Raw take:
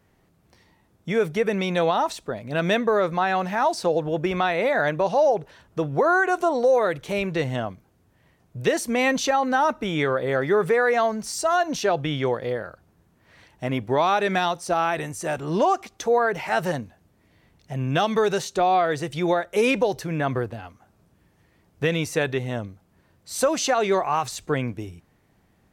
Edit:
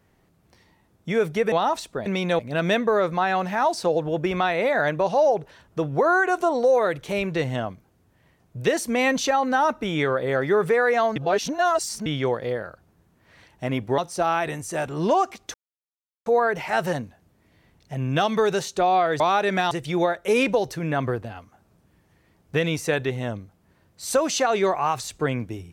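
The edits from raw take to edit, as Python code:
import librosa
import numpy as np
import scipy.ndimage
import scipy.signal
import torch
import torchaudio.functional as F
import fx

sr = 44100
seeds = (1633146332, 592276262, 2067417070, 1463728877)

y = fx.edit(x, sr, fx.move(start_s=1.52, length_s=0.33, to_s=2.39),
    fx.reverse_span(start_s=11.16, length_s=0.9),
    fx.move(start_s=13.98, length_s=0.51, to_s=18.99),
    fx.insert_silence(at_s=16.05, length_s=0.72), tone=tone)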